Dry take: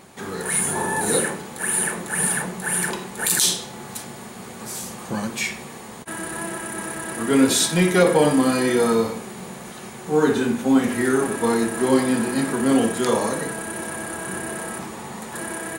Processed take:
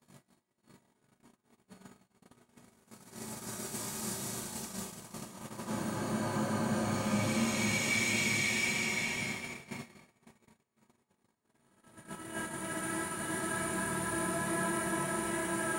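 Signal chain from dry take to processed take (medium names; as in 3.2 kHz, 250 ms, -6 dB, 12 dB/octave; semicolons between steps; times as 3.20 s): simulated room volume 2300 m³, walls furnished, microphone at 2.8 m; Paulstretch 6.3×, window 0.50 s, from 4.13 s; gate -29 dBFS, range -43 dB; trim -7.5 dB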